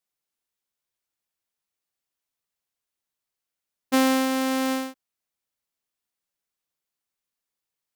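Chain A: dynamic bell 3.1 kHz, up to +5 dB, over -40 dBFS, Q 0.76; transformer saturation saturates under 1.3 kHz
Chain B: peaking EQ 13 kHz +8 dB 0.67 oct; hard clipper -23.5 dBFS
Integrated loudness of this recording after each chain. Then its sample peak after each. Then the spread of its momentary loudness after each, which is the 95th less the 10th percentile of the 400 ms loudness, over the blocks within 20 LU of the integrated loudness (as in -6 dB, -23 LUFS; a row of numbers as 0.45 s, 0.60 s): -28.5 LUFS, -27.5 LUFS; -17.5 dBFS, -23.5 dBFS; 6 LU, 6 LU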